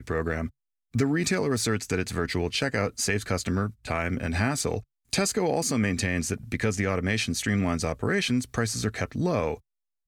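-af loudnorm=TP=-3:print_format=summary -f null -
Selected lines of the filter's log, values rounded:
Input Integrated:    -27.4 LUFS
Input True Peak:     -13.0 dBTP
Input LRA:             1.3 LU
Input Threshold:     -37.5 LUFS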